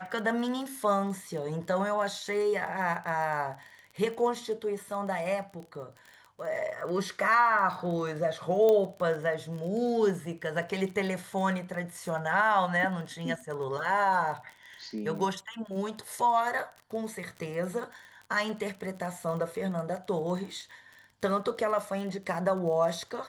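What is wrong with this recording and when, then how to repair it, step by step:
crackle 31 per s -37 dBFS
8.69 s: pop -15 dBFS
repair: de-click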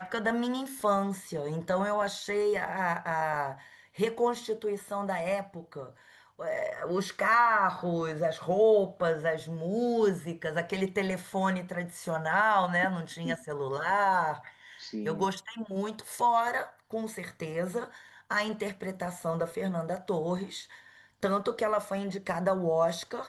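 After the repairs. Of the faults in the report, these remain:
nothing left

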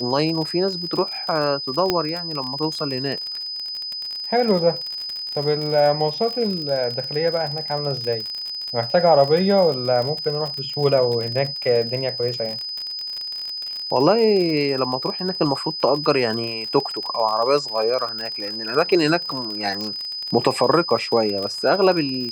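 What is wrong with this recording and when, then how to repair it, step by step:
crackle 45 per s -25 dBFS
whine 5 kHz -27 dBFS
1.90 s: pop -5 dBFS
19.81 s: pop -16 dBFS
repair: de-click; band-stop 5 kHz, Q 30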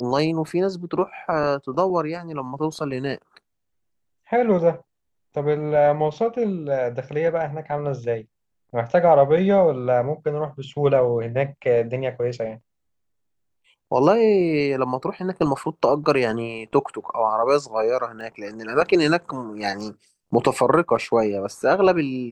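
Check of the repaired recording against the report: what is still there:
19.81 s: pop

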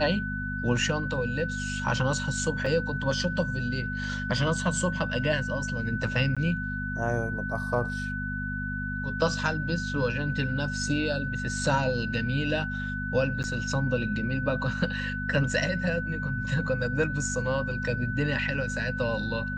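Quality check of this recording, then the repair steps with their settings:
hum 50 Hz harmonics 5 -34 dBFS
whine 1.5 kHz -33 dBFS
2.66 s: dropout 3.7 ms
6.35–6.37 s: dropout 16 ms
13.43–13.44 s: dropout 9 ms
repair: de-hum 50 Hz, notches 5; band-stop 1.5 kHz, Q 30; interpolate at 2.66 s, 3.7 ms; interpolate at 6.35 s, 16 ms; interpolate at 13.43 s, 9 ms

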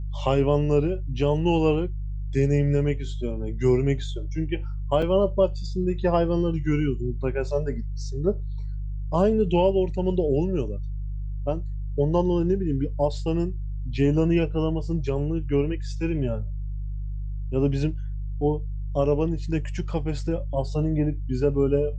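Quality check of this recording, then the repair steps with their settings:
hum 50 Hz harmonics 3 -30 dBFS
5.02 s: dropout 4.1 ms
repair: de-hum 50 Hz, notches 3; interpolate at 5.02 s, 4.1 ms

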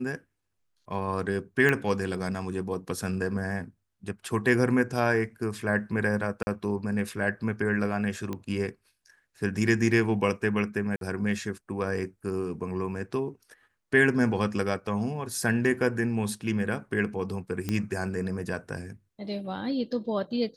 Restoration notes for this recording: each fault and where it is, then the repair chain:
1.69 s: pop -13 dBFS
6.43–6.47 s: dropout 40 ms
8.33 s: pop -20 dBFS
10.96–11.01 s: dropout 52 ms
17.69 s: pop -15 dBFS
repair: de-click; interpolate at 6.43 s, 40 ms; interpolate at 10.96 s, 52 ms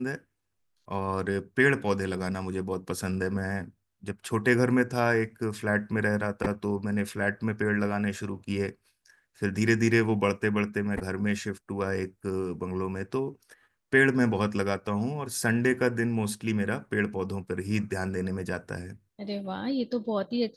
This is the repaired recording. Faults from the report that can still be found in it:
nothing left

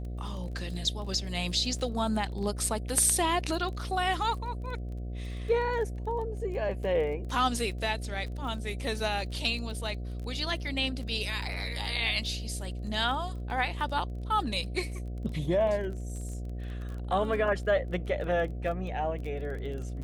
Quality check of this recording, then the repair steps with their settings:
buzz 60 Hz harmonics 12 -36 dBFS
crackle 23 per s -38 dBFS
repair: de-click; de-hum 60 Hz, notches 12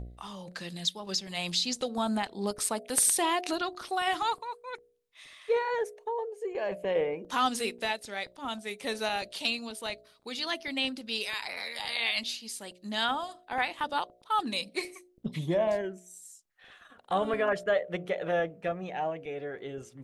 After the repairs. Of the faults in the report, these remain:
nothing left

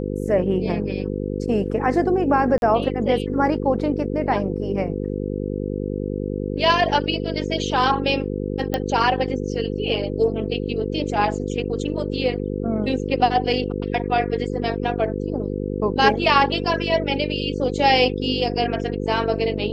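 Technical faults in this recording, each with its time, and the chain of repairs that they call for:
buzz 50 Hz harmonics 10 -26 dBFS
2.58–2.62 s: dropout 41 ms
8.74 s: pop -9 dBFS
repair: de-click; de-hum 50 Hz, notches 10; interpolate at 2.58 s, 41 ms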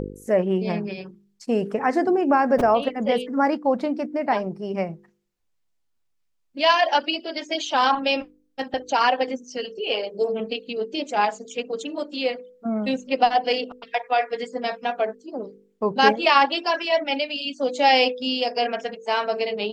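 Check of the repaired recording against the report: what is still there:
nothing left

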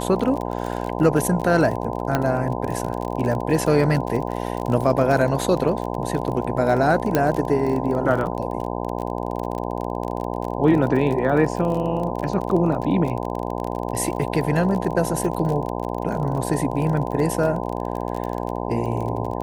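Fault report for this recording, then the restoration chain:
buzz 60 Hz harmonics 17 -27 dBFS
crackle 32 per s -26 dBFS
2.15 s: pop -7 dBFS
7.15 s: pop -5 dBFS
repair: de-click; de-hum 60 Hz, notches 17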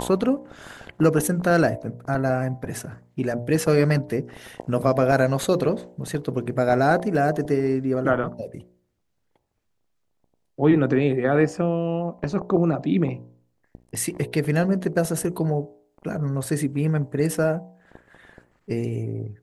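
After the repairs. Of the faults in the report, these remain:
7.15 s: pop

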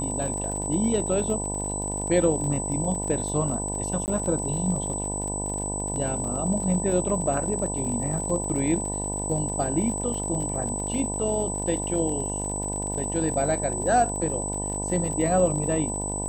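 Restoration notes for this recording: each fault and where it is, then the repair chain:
buzz 50 Hz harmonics 20 -32 dBFS
crackle 51 per s -32 dBFS
whine 8 kHz -30 dBFS
4.06–4.08 s: dropout 19 ms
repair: de-click; de-hum 50 Hz, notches 20; band-stop 8 kHz, Q 30; interpolate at 4.06 s, 19 ms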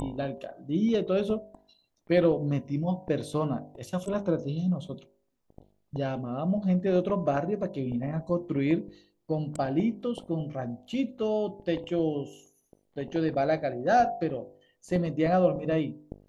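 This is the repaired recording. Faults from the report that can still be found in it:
nothing left

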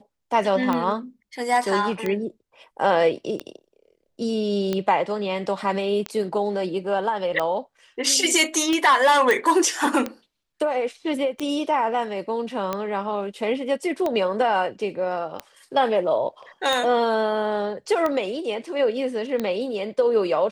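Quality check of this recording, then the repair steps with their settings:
tick 45 rpm -12 dBFS
9.31 s: pop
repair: de-click

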